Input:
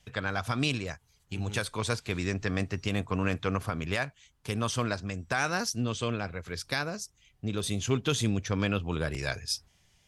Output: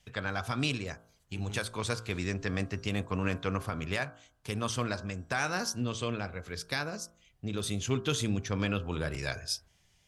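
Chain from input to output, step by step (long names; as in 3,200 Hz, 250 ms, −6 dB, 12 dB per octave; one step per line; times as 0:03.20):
hum removal 56.38 Hz, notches 29
level −2 dB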